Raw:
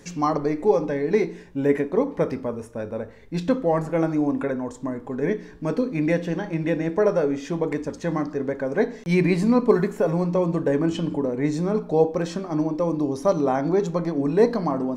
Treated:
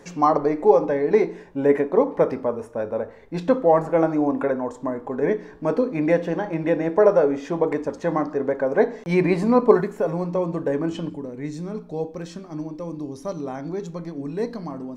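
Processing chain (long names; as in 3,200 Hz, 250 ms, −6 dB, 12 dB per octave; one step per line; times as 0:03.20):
parametric band 750 Hz +11.5 dB 2.6 octaves, from 0:09.81 +4.5 dB, from 0:11.10 −5.5 dB
level −5 dB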